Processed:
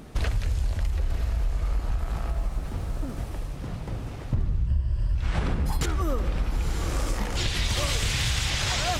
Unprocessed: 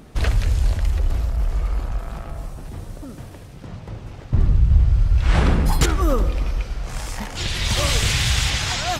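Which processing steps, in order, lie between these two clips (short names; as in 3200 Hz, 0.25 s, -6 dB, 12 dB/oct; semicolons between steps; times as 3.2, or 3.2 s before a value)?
4.67–5.15 ripple EQ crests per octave 1.3, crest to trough 12 dB; on a send: diffused feedback echo 0.969 s, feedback 41%, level -9.5 dB; on the sum: compressor 6:1, threshold -22 dBFS, peak gain reduction 15 dB; 2.33–3.17 decimation joined by straight lines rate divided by 2×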